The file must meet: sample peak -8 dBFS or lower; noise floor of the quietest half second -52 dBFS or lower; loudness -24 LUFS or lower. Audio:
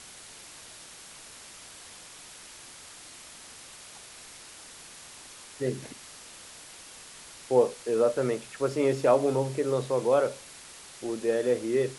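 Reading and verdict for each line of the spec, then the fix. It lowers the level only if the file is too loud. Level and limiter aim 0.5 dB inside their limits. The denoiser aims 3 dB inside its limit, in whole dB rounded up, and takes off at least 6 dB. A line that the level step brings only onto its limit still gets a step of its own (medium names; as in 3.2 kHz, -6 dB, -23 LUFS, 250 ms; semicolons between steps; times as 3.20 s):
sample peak -10.5 dBFS: pass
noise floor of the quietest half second -48 dBFS: fail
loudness -27.0 LUFS: pass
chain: noise reduction 7 dB, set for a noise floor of -48 dBFS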